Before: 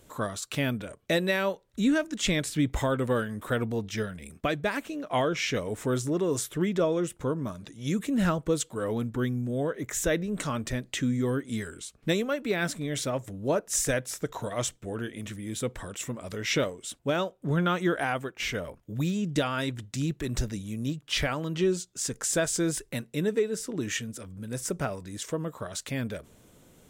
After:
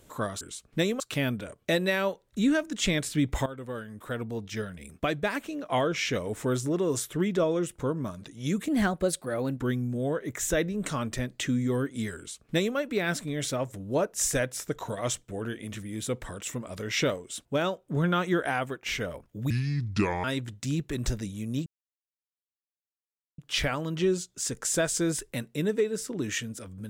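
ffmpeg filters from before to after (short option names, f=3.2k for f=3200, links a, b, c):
-filter_complex "[0:a]asplit=9[a][b][c][d][e][f][g][h][i];[a]atrim=end=0.412[j];[b]atrim=start=11.708:end=12.302[k];[c]atrim=start=0.408:end=2.87,asetpts=PTS-STARTPTS,afade=t=out:st=2.458:d=0.004:c=hsin:silence=0.188365[l];[d]atrim=start=2.87:end=8.094,asetpts=PTS-STARTPTS,afade=t=in:d=1.61:silence=0.188365[m];[e]atrim=start=8.09:end=9.13,asetpts=PTS-STARTPTS,asetrate=50274,aresample=44100[n];[f]atrim=start=9.126:end=19.044[o];[g]atrim=start=19.04:end=19.55,asetpts=PTS-STARTPTS,asetrate=30429,aresample=44100[p];[h]atrim=start=19.546:end=20.97,asetpts=PTS-STARTPTS,afade=t=out:st=1.42:d=0.004:c=hsin,apad=pad_dur=1.72[q];[i]atrim=start=20.97,asetpts=PTS-STARTPTS,afade=t=in:d=0.004:c=hsin[r];[j][k]acrossfade=d=0.004:c1=hsin:c2=hsin[s];[l][m]concat=n=2:v=0:a=1[t];[s][t]acrossfade=d=0.004:c1=hsin:c2=hsin[u];[u][n]acrossfade=d=0.004:c1=hsin:c2=hsin[v];[v][o]acrossfade=d=0.004:c1=hsin:c2=hsin[w];[w][p]acrossfade=d=0.004:c1=hsin:c2=hsin[x];[q][r]concat=n=2:v=0:a=1[y];[x][y]acrossfade=d=0.004:c1=hsin:c2=hsin"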